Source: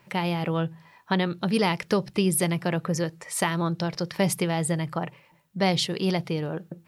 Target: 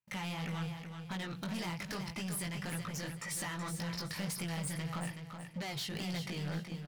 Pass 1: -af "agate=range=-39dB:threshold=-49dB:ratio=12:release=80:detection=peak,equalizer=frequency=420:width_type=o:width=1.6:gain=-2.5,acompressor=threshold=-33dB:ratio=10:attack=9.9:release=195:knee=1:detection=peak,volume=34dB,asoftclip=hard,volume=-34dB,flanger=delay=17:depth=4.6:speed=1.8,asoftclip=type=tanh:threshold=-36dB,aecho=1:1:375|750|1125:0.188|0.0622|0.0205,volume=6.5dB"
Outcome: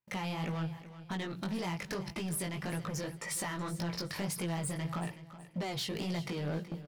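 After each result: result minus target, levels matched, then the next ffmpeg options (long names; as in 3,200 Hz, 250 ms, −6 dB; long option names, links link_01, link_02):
soft clipping: distortion −7 dB; echo-to-direct −7 dB; 500 Hz band +4.0 dB
-af "agate=range=-39dB:threshold=-49dB:ratio=12:release=80:detection=peak,equalizer=frequency=420:width_type=o:width=1.6:gain=-2.5,acompressor=threshold=-33dB:ratio=10:attack=9.9:release=195:knee=1:detection=peak,volume=34dB,asoftclip=hard,volume=-34dB,flanger=delay=17:depth=4.6:speed=1.8,asoftclip=type=tanh:threshold=-42dB,aecho=1:1:375|750|1125:0.188|0.0622|0.0205,volume=6.5dB"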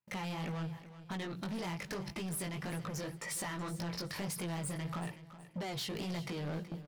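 echo-to-direct −7 dB; 500 Hz band +4.0 dB
-af "agate=range=-39dB:threshold=-49dB:ratio=12:release=80:detection=peak,equalizer=frequency=420:width_type=o:width=1.6:gain=-2.5,acompressor=threshold=-33dB:ratio=10:attack=9.9:release=195:knee=1:detection=peak,volume=34dB,asoftclip=hard,volume=-34dB,flanger=delay=17:depth=4.6:speed=1.8,asoftclip=type=tanh:threshold=-42dB,aecho=1:1:375|750|1125|1500:0.422|0.139|0.0459|0.0152,volume=6.5dB"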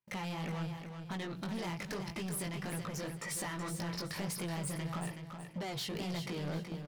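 500 Hz band +4.0 dB
-af "agate=range=-39dB:threshold=-49dB:ratio=12:release=80:detection=peak,equalizer=frequency=420:width_type=o:width=1.6:gain=-12.5,acompressor=threshold=-33dB:ratio=10:attack=9.9:release=195:knee=1:detection=peak,volume=34dB,asoftclip=hard,volume=-34dB,flanger=delay=17:depth=4.6:speed=1.8,asoftclip=type=tanh:threshold=-42dB,aecho=1:1:375|750|1125|1500:0.422|0.139|0.0459|0.0152,volume=6.5dB"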